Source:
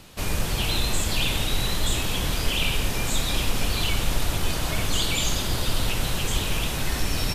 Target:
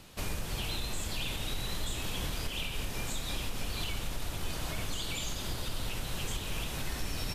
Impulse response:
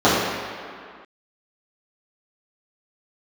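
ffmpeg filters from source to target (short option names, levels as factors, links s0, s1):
-af "alimiter=limit=0.112:level=0:latency=1:release=367,volume=0.531"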